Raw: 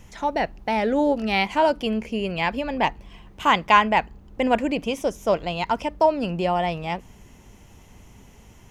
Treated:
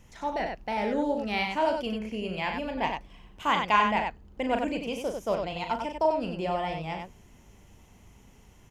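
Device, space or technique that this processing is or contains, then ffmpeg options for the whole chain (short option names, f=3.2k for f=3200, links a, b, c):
slapback doubling: -filter_complex "[0:a]asplit=3[a][b][c];[b]adelay=38,volume=-7dB[d];[c]adelay=94,volume=-5dB[e];[a][d][e]amix=inputs=3:normalize=0,volume=-8dB"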